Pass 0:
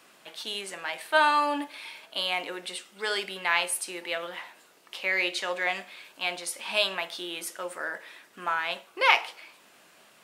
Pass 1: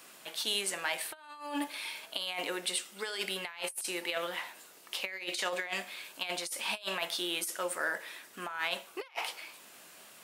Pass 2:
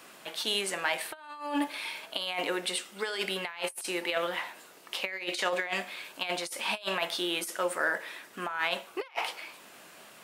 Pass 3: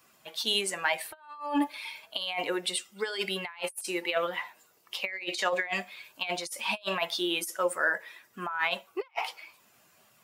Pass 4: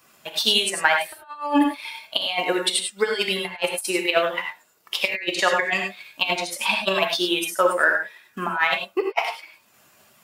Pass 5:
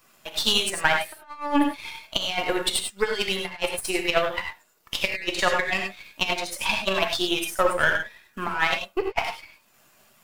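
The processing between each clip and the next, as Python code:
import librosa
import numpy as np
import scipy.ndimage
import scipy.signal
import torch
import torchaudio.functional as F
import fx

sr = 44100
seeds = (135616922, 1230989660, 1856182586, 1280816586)

y1 = fx.high_shelf(x, sr, hz=6300.0, db=10.5)
y1 = fx.over_compress(y1, sr, threshold_db=-31.0, ratio=-0.5)
y1 = y1 * librosa.db_to_amplitude(-4.0)
y2 = fx.high_shelf(y1, sr, hz=3700.0, db=-8.0)
y2 = y2 * librosa.db_to_amplitude(5.5)
y3 = fx.bin_expand(y2, sr, power=1.5)
y3 = y3 * librosa.db_to_amplitude(4.0)
y4 = fx.transient(y3, sr, attack_db=6, sustain_db=-6)
y4 = fx.rev_gated(y4, sr, seeds[0], gate_ms=120, shape='rising', drr_db=3.0)
y4 = y4 * librosa.db_to_amplitude(5.0)
y5 = np.where(y4 < 0.0, 10.0 ** (-7.0 / 20.0) * y4, y4)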